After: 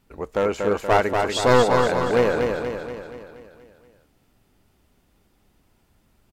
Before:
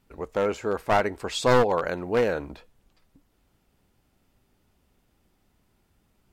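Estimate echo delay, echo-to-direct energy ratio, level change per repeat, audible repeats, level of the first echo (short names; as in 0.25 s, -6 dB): 0.238 s, -3.0 dB, -5.5 dB, 6, -4.5 dB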